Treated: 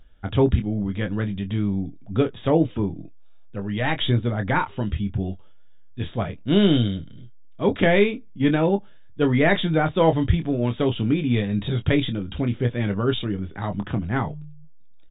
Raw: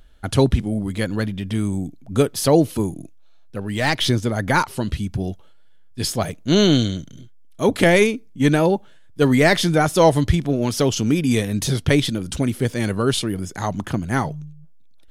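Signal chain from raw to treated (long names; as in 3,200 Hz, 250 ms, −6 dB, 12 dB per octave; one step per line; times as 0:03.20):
linear-phase brick-wall low-pass 3,800 Hz
low-shelf EQ 200 Hz +4 dB
on a send: ambience of single reflections 10 ms −11.5 dB, 25 ms −8.5 dB
on the sum: level −5 dB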